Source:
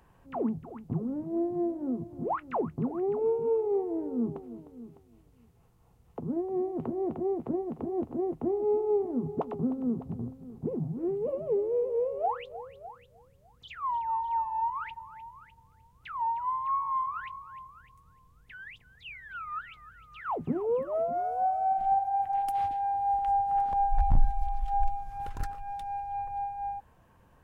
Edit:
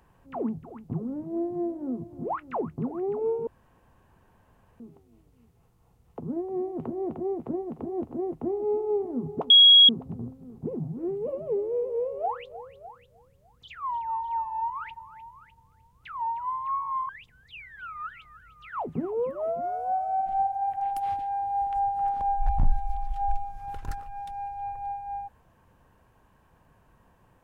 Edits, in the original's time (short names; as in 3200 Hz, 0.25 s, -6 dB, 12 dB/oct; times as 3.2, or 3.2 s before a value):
3.47–4.8 room tone
9.5–9.89 bleep 3310 Hz -10.5 dBFS
17.09–18.61 cut